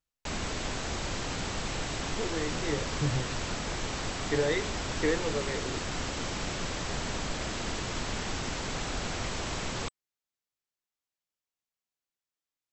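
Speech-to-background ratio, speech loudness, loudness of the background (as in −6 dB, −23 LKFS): 0.5 dB, −33.5 LKFS, −34.0 LKFS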